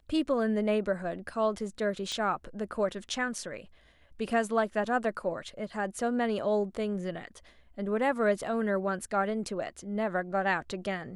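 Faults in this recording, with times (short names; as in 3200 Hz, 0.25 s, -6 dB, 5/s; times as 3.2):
2.12 pop -22 dBFS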